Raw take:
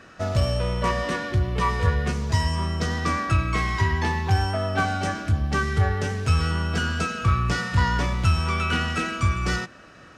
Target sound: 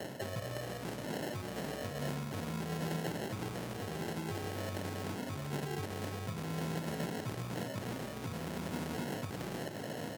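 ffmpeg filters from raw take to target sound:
-filter_complex "[0:a]lowpass=f=3.6k:w=0.5412,lowpass=f=3.6k:w=1.3066,equalizer=f=240:w=0.56:g=-6.5,areverse,acompressor=threshold=-34dB:ratio=10,areverse,flanger=delay=18:depth=2.3:speed=0.28,acrossover=split=380[a][b];[b]aeval=exprs='(mod(112*val(0)+1,2)-1)/112':c=same[c];[a][c]amix=inputs=2:normalize=0,acrossover=split=160|990[d][e][f];[d]acompressor=threshold=-45dB:ratio=4[g];[e]acompressor=threshold=-52dB:ratio=4[h];[f]acompressor=threshold=-50dB:ratio=4[i];[g][h][i]amix=inputs=3:normalize=0,acrusher=samples=37:mix=1:aa=0.000001,alimiter=level_in=17.5dB:limit=-24dB:level=0:latency=1:release=162,volume=-17.5dB,highpass=f=120:w=0.5412,highpass=f=120:w=1.3066,aecho=1:1:415:0.15,volume=14dB" -ar 48000 -c:a libmp3lame -b:a 80k

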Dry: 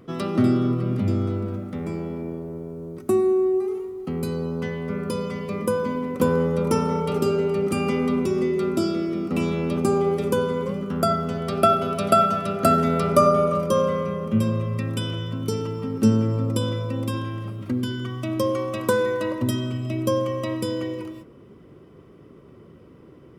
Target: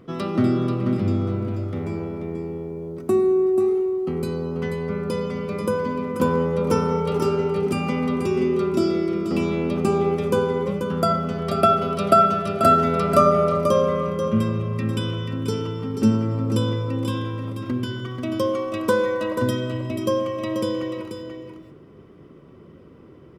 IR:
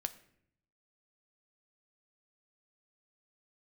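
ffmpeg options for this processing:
-filter_complex "[0:a]aecho=1:1:486:0.422,asplit=2[a][b];[1:a]atrim=start_sample=2205,lowpass=7.2k[c];[b][c]afir=irnorm=-1:irlink=0,volume=-2.5dB[d];[a][d]amix=inputs=2:normalize=0,volume=-4dB"

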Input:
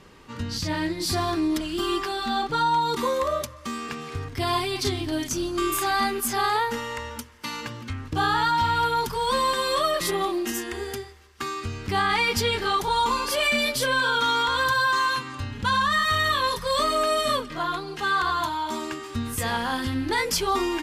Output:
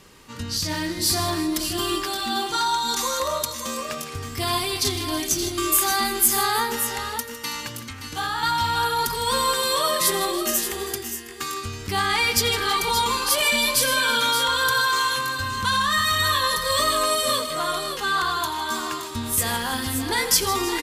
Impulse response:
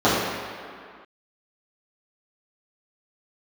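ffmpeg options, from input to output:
-filter_complex "[0:a]asettb=1/sr,asplit=3[a][b][c];[a]atrim=end=2.484[d];[b]atrim=start=2.48:end=3.2,asetpts=PTS-STARTPTS,afade=t=in:d=0.004:c=qsin,afade=t=out:st=0.716:d=0.004:c=qsin,equalizer=f=160:t=o:w=0.67:g=-11,equalizer=f=400:t=o:w=0.67:g=-11,equalizer=f=6.3k:t=o:w=0.67:g=10[e];[c]atrim=start=3.196[f];[d][e]acrossfade=d=0.004:c1=hsin:c2=qsin[g];[g][f]acrossfade=d=0.004:c1=qsin:c2=hsin,asettb=1/sr,asplit=3[h][i][j];[h]atrim=end=7.884[k];[i]atrim=start=7.88:end=8.43,asetpts=PTS-STARTPTS,afade=t=in:d=0.004:c=qsin,afade=t=out:st=0.546:d=0.004:c=qsin,acrossover=split=110|610|3100[l][m][n][o];[l]acompressor=threshold=-43dB:ratio=4[p];[m]acompressor=threshold=-41dB:ratio=4[q];[n]acompressor=threshold=-25dB:ratio=4[r];[o]acompressor=threshold=-41dB:ratio=4[s];[p][q][r][s]amix=inputs=4:normalize=0[t];[j]atrim=start=8.426[u];[k][t]acrossfade=d=0.004:c1=hsin:c2=qsin[v];[v][u]acrossfade=d=0.004:c1=qsin:c2=hsin,asplit=2[w][x];[x]aecho=0:1:86|156|325|572|593:0.141|0.211|0.133|0.335|0.224[y];[w][y]amix=inputs=2:normalize=0,crystalizer=i=2.5:c=0,volume=-1.5dB"

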